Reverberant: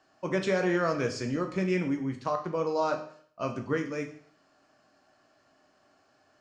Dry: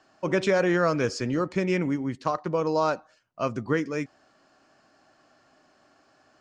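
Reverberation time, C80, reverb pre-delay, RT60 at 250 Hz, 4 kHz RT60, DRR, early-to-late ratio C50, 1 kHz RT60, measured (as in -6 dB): 0.55 s, 13.5 dB, 10 ms, 0.55 s, 0.55 s, 3.5 dB, 10.0 dB, 0.55 s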